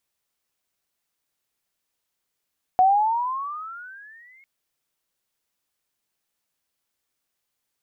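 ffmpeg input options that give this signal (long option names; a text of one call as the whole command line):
ffmpeg -f lavfi -i "aevalsrc='pow(10,(-12-38.5*t/1.65)/20)*sin(2*PI*731*1.65/(19*log(2)/12)*(exp(19*log(2)/12*t/1.65)-1))':duration=1.65:sample_rate=44100" out.wav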